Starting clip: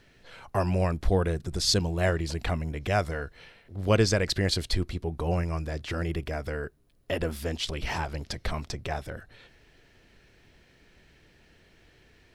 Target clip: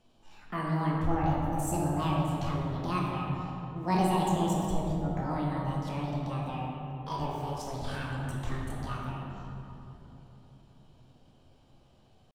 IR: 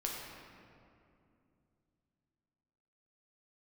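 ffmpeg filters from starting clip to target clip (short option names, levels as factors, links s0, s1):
-filter_complex "[0:a]asetrate=76340,aresample=44100,atempo=0.577676,highshelf=f=2100:g=-8.5[s0];[1:a]atrim=start_sample=2205,asetrate=31752,aresample=44100[s1];[s0][s1]afir=irnorm=-1:irlink=0,volume=0.447"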